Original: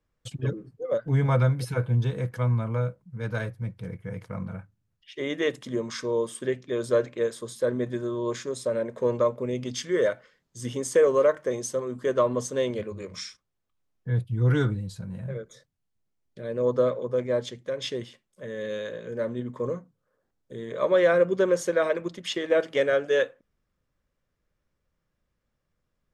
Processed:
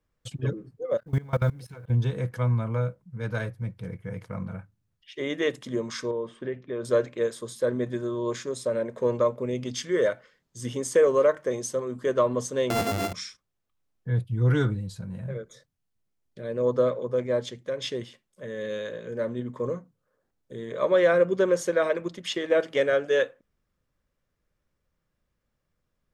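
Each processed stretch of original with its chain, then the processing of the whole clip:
0.97–1.90 s: companding laws mixed up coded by A + level held to a coarse grid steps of 21 dB
6.11–6.85 s: low-pass 2.3 kHz + compression 2:1, threshold -30 dBFS
12.70–13.13 s: sorted samples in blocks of 64 samples + waveshaping leveller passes 3
whole clip: none

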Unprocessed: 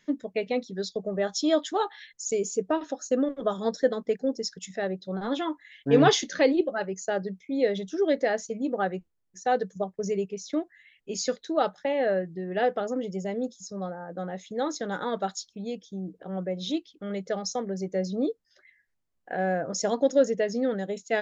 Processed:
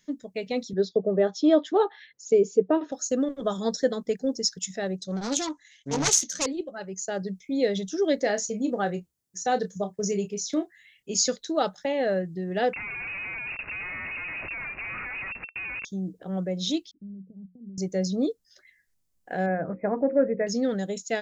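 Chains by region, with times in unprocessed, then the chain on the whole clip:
0.73–2.92 s: band-pass 110–2500 Hz + peaking EQ 430 Hz +9 dB 1.2 oct
4.98–6.46 s: self-modulated delay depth 0.46 ms + resonant low-pass 6.4 kHz, resonance Q 5.6
8.22–11.12 s: high-pass 57 Hz + doubling 29 ms -9.5 dB
12.73–15.85 s: compression 1.5:1, threshold -34 dBFS + Schmitt trigger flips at -49.5 dBFS + frequency inversion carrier 2.7 kHz
16.91–17.78 s: compression 12:1, threshold -34 dBFS + four-pole ladder low-pass 280 Hz, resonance 40% + hum notches 60/120/180 Hz
19.46–20.47 s: brick-wall FIR low-pass 2.6 kHz + hum notches 60/120/180/240/300/360/420/480/540 Hz
whole clip: tone controls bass +6 dB, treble +12 dB; level rider gain up to 6 dB; trim -6.5 dB

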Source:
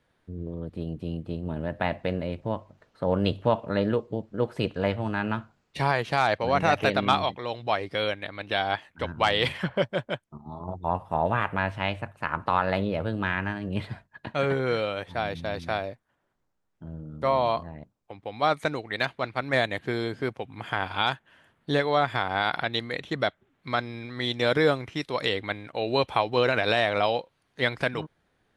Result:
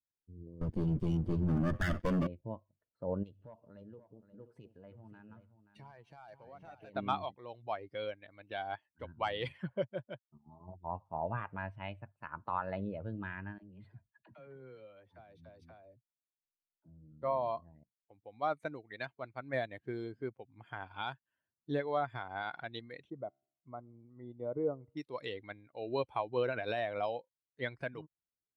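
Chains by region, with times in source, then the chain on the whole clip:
0.61–2.27 s: comb filter that takes the minimum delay 0.6 ms + waveshaping leveller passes 5
3.23–6.96 s: overload inside the chain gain 15 dB + compression 2.5:1, threshold -38 dBFS + multi-tap echo 163/528 ms -19/-8 dB
13.58–17.12 s: compression 4:1, threshold -34 dBFS + phase dispersion lows, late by 48 ms, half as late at 370 Hz
23.10–24.97 s: Savitzky-Golay filter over 65 samples + feedback comb 67 Hz, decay 0.95 s, mix 30%
whole clip: expander on every frequency bin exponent 1.5; treble shelf 2.2 kHz -12 dB; trim -6.5 dB

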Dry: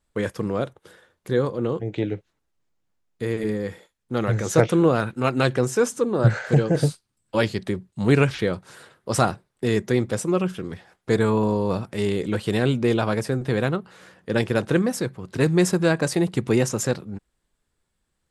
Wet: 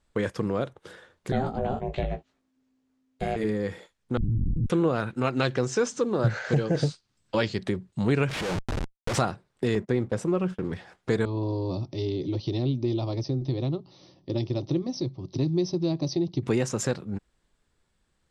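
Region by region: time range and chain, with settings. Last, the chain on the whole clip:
1.32–3.36 s: ring modulator 260 Hz + doubling 18 ms -5.5 dB
4.17–4.70 s: Schmitt trigger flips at -21.5 dBFS + inverse Chebyshev low-pass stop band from 640 Hz, stop band 50 dB
5.32–7.54 s: low-pass 6.6 kHz 24 dB/octave + treble shelf 4.6 kHz +8 dB + companded quantiser 8-bit
8.29–9.18 s: low-pass 8.3 kHz + Schmitt trigger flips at -39 dBFS
9.75–10.73 s: companding laws mixed up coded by mu + gate -34 dBFS, range -30 dB + treble shelf 2.4 kHz -9 dB
11.25–16.43 s: brick-wall FIR low-pass 6.2 kHz + high-order bell 1.4 kHz -10 dB 2.5 oct + static phaser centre 310 Hz, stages 8
whole clip: compression 2:1, threshold -31 dBFS; low-pass 7.6 kHz 12 dB/octave; trim +3.5 dB

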